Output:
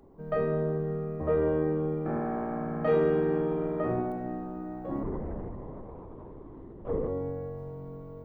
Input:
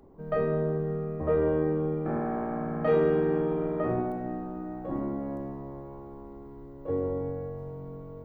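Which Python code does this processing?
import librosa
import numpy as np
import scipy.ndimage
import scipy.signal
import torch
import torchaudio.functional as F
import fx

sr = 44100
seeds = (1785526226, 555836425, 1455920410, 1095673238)

y = fx.lpc_vocoder(x, sr, seeds[0], excitation='whisper', order=10, at=(5.03, 7.08))
y = F.gain(torch.from_numpy(y), -1.0).numpy()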